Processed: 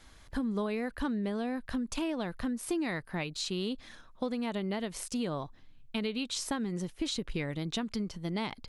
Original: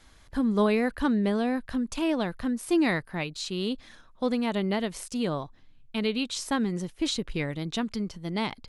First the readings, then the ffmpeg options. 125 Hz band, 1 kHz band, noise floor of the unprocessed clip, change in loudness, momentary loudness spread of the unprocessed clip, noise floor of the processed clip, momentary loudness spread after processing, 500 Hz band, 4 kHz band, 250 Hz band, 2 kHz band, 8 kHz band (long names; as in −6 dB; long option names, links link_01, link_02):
−4.5 dB, −7.0 dB, −56 dBFS, −6.0 dB, 8 LU, −56 dBFS, 4 LU, −7.0 dB, −4.0 dB, −6.5 dB, −6.5 dB, −2.0 dB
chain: -af "acompressor=threshold=-30dB:ratio=6"